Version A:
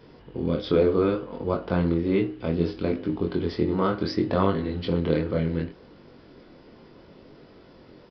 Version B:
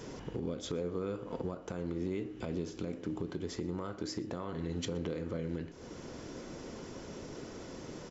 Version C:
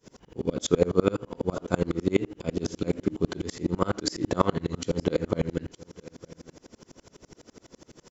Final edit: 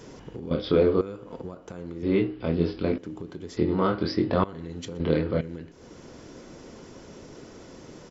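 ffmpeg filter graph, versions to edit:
-filter_complex "[0:a]asplit=4[a][b][c][d];[1:a]asplit=5[e][f][g][h][i];[e]atrim=end=0.512[j];[a]atrim=start=0.508:end=1.012[k];[f]atrim=start=1.008:end=2.032[l];[b]atrim=start=2.028:end=2.982[m];[g]atrim=start=2.978:end=3.572[n];[c]atrim=start=3.568:end=4.442[o];[h]atrim=start=4.438:end=5.002[p];[d]atrim=start=4.998:end=5.412[q];[i]atrim=start=5.408[r];[j][k]acrossfade=d=0.004:c1=hsin:c2=hsin[s];[s][l]acrossfade=d=0.004:c1=hsin:c2=hsin[t];[t][m]acrossfade=d=0.004:c1=hsin:c2=hsin[u];[u][n]acrossfade=d=0.004:c1=hsin:c2=hsin[v];[v][o]acrossfade=d=0.004:c1=hsin:c2=hsin[w];[w][p]acrossfade=d=0.004:c1=hsin:c2=hsin[x];[x][q]acrossfade=d=0.004:c1=hsin:c2=hsin[y];[y][r]acrossfade=d=0.004:c1=hsin:c2=hsin"

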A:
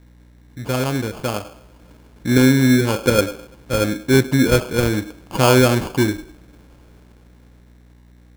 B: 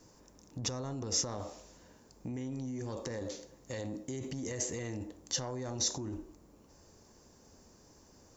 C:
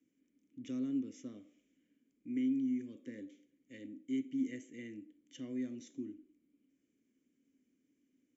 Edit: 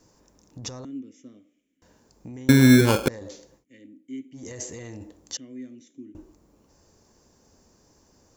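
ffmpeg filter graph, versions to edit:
-filter_complex "[2:a]asplit=3[a][b][c];[1:a]asplit=5[d][e][f][g][h];[d]atrim=end=0.852[i];[a]atrim=start=0.848:end=1.822[j];[e]atrim=start=1.818:end=2.492[k];[0:a]atrim=start=2.488:end=3.082[l];[f]atrim=start=3.078:end=3.65[m];[b]atrim=start=3.55:end=4.42[n];[g]atrim=start=4.32:end=5.372[o];[c]atrim=start=5.368:end=6.152[p];[h]atrim=start=6.148[q];[i][j]acrossfade=d=0.004:c1=hsin:c2=hsin[r];[r][k]acrossfade=d=0.004:c1=hsin:c2=hsin[s];[s][l]acrossfade=d=0.004:c1=hsin:c2=hsin[t];[t][m]acrossfade=d=0.004:c1=hsin:c2=hsin[u];[u][n]acrossfade=d=0.1:c1=tri:c2=tri[v];[v][o]acrossfade=d=0.1:c1=tri:c2=tri[w];[w][p]acrossfade=d=0.004:c1=hsin:c2=hsin[x];[x][q]acrossfade=d=0.004:c1=hsin:c2=hsin"

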